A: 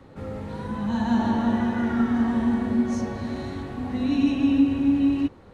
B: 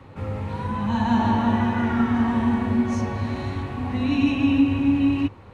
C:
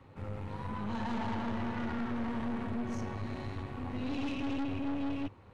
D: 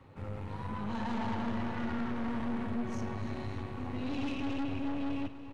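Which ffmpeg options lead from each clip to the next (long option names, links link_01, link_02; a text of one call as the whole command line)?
ffmpeg -i in.wav -af "equalizer=frequency=100:width_type=o:width=0.67:gain=10,equalizer=frequency=1000:width_type=o:width=0.67:gain=7,equalizer=frequency=2500:width_type=o:width=0.67:gain=8" out.wav
ffmpeg -i in.wav -af "aeval=exprs='(tanh(17.8*val(0)+0.65)-tanh(0.65))/17.8':channel_layout=same,volume=-7.5dB" out.wav
ffmpeg -i in.wav -af "aecho=1:1:288|576|864|1152|1440|1728:0.2|0.118|0.0695|0.041|0.0242|0.0143" out.wav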